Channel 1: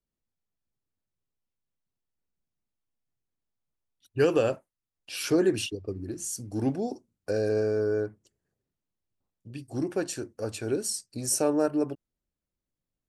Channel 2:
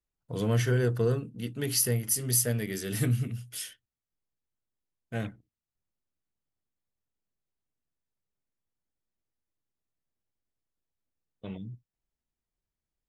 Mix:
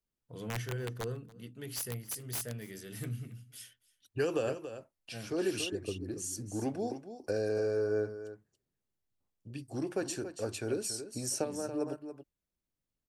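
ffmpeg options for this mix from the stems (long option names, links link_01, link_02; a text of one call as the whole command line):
ffmpeg -i stem1.wav -i stem2.wav -filter_complex "[0:a]acrossover=split=390|5600[link_01][link_02][link_03];[link_01]acompressor=threshold=-34dB:ratio=4[link_04];[link_02]acompressor=threshold=-29dB:ratio=4[link_05];[link_03]acompressor=threshold=-36dB:ratio=4[link_06];[link_04][link_05][link_06]amix=inputs=3:normalize=0,volume=-2.5dB,asplit=2[link_07][link_08];[link_08]volume=-11dB[link_09];[1:a]bandreject=frequency=50:width_type=h:width=6,bandreject=frequency=100:width_type=h:width=6,bandreject=frequency=150:width_type=h:width=6,bandreject=frequency=200:width_type=h:width=6,bandreject=frequency=250:width_type=h:width=6,aeval=exprs='(mod(7.08*val(0)+1,2)-1)/7.08':channel_layout=same,volume=-11.5dB,asplit=3[link_10][link_11][link_12];[link_11]volume=-22.5dB[link_13];[link_12]apad=whole_len=577130[link_14];[link_07][link_14]sidechaincompress=threshold=-55dB:ratio=8:attack=11:release=128[link_15];[link_09][link_13]amix=inputs=2:normalize=0,aecho=0:1:282:1[link_16];[link_15][link_10][link_16]amix=inputs=3:normalize=0" out.wav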